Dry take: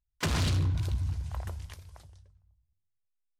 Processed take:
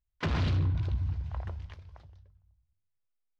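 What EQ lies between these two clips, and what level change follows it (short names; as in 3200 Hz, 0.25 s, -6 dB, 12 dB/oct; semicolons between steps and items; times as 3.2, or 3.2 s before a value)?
air absorption 240 m; 0.0 dB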